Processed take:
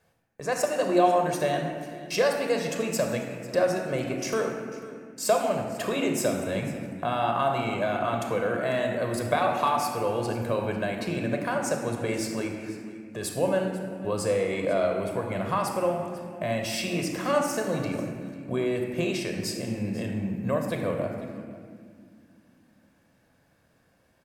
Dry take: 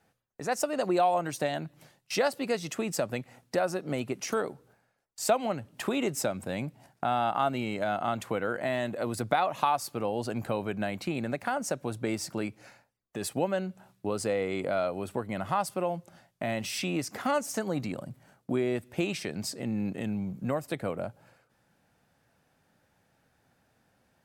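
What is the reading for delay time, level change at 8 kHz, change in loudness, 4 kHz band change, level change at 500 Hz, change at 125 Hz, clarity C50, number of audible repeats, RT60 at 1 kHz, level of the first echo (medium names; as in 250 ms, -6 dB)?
495 ms, +2.5 dB, +3.5 dB, +3.0 dB, +5.0 dB, +4.5 dB, 4.0 dB, 1, 1.8 s, -18.5 dB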